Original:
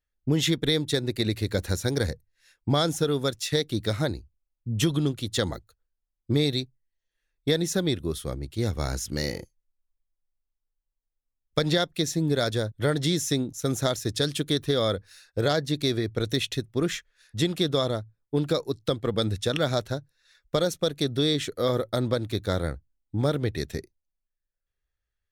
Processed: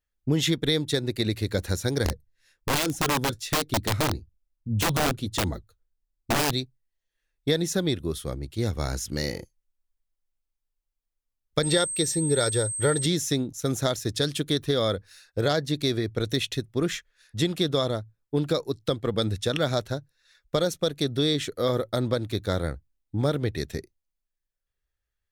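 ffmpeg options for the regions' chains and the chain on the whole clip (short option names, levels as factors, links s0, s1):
-filter_complex "[0:a]asettb=1/sr,asplit=3[s0][s1][s2];[s0]atrim=end=2.054[s3];[s1]atrim=start=2.05:end=6.54,asetpts=PTS-STARTPTS,afade=t=in:d=0.004:c=qsin,afade=t=out:st=4.486:d=0.004:c=qsin,lowshelf=f=410:g=8.5,flanger=delay=2.8:depth=6.2:regen=-51:speed=1.2:shape=sinusoidal,aeval=exprs='(mod(8.41*val(0)+1,2)-1)/8.41':c=same[s4];[s2]atrim=start=6.536[s5];[s3][s4]acrossfade=d=0.004:c1=hsin:c2=qsin[s6];[s6][s5]acrossfade=d=0.004:c1=qsin:c2=hsin,asettb=1/sr,asplit=3[s7][s8][s9];[s7]atrim=end=11.634[s10];[s8]atrim=start=11.63:end=13.06,asetpts=PTS-STARTPTS,afade=t=in:d=0.004:c=qsin,afade=t=out:st=1.426:d=0.004:c=qsin,aecho=1:1:2.2:0.47,atrim=end_sample=63063,aeval=exprs='val(0)+0.0355*sin(2*PI*8300*n/s)':c=same[s11];[s9]atrim=start=13.056[s12];[s10][s11]acrossfade=d=0.004:c1=hsin:c2=qsin[s13];[s13][s12]acrossfade=d=0.004:c1=qsin:c2=hsin"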